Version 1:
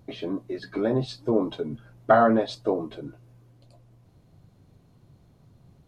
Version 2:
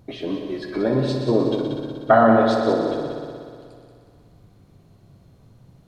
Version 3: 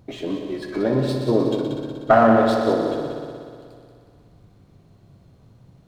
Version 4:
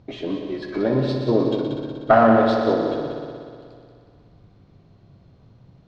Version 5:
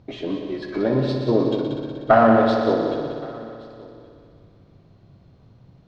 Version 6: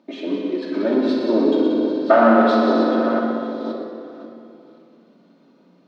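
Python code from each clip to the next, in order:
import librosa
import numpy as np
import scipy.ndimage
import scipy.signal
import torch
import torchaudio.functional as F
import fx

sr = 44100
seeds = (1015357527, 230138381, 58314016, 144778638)

y1 = fx.echo_heads(x, sr, ms=61, heads='all three', feedback_pct=67, wet_db=-10.5)
y1 = F.gain(torch.from_numpy(y1), 3.0).numpy()
y2 = fx.running_max(y1, sr, window=3)
y3 = scipy.signal.sosfilt(scipy.signal.butter(4, 5400.0, 'lowpass', fs=sr, output='sos'), y2)
y4 = y3 + 10.0 ** (-24.0 / 20.0) * np.pad(y3, (int(1123 * sr / 1000.0), 0))[:len(y3)]
y5 = fx.reverse_delay(y4, sr, ms=532, wet_db=-10.0)
y5 = scipy.signal.sosfilt(scipy.signal.ellip(4, 1.0, 50, 200.0, 'highpass', fs=sr, output='sos'), y5)
y5 = fx.room_shoebox(y5, sr, seeds[0], volume_m3=2700.0, walls='mixed', distance_m=2.6)
y5 = F.gain(torch.from_numpy(y5), -1.0).numpy()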